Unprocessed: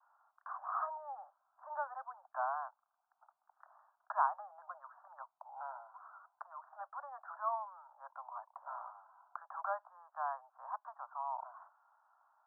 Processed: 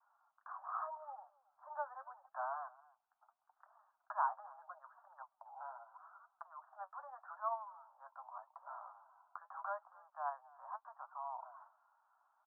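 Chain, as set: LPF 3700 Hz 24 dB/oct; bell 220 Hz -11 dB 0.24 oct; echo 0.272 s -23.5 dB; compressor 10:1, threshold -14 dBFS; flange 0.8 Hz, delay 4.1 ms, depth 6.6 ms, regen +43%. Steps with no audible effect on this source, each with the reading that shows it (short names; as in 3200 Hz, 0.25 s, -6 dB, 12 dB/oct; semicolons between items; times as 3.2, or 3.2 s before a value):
LPF 3700 Hz: input band ends at 1700 Hz; bell 220 Hz: input band starts at 510 Hz; compressor, threshold -14 dBFS: input peak -19.0 dBFS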